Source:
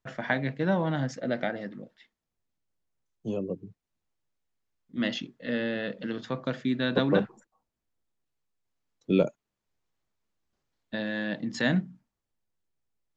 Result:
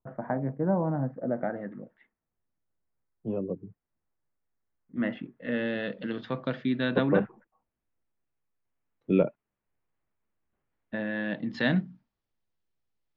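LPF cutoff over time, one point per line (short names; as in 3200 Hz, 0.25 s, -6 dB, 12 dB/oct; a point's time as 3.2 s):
LPF 24 dB/oct
1.29 s 1100 Hz
1.75 s 2000 Hz
5.26 s 2000 Hz
5.75 s 4000 Hz
6.77 s 4000 Hz
7.18 s 2500 Hz
11.02 s 2500 Hz
11.77 s 4900 Hz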